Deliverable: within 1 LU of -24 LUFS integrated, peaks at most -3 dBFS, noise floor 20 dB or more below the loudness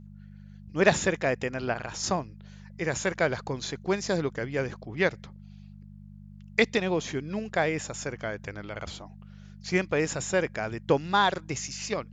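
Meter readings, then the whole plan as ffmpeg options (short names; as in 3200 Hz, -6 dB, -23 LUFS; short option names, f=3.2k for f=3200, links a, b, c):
hum 50 Hz; harmonics up to 200 Hz; hum level -45 dBFS; loudness -28.5 LUFS; peak -8.5 dBFS; loudness target -24.0 LUFS
-> -af "bandreject=f=50:t=h:w=4,bandreject=f=100:t=h:w=4,bandreject=f=150:t=h:w=4,bandreject=f=200:t=h:w=4"
-af "volume=4.5dB"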